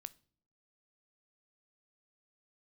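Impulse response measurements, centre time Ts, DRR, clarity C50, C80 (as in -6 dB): 2 ms, 15.5 dB, 22.0 dB, 27.5 dB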